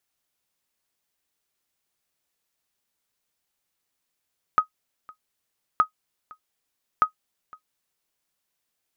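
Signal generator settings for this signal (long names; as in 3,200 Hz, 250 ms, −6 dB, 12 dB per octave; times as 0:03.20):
ping with an echo 1,260 Hz, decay 0.10 s, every 1.22 s, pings 3, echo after 0.51 s, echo −25.5 dB −8.5 dBFS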